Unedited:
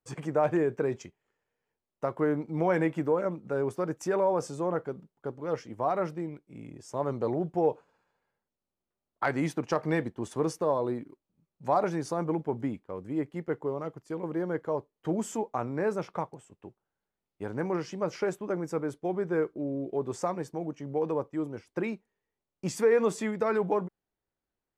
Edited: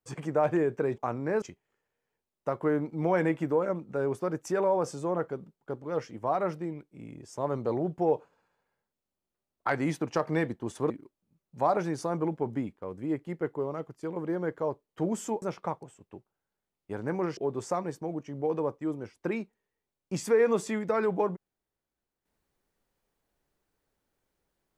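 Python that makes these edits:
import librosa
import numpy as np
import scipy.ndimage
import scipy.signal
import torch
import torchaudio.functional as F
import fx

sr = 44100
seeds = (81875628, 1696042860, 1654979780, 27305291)

y = fx.edit(x, sr, fx.cut(start_s=10.46, length_s=0.51),
    fx.move(start_s=15.49, length_s=0.44, to_s=0.98),
    fx.cut(start_s=17.88, length_s=2.01), tone=tone)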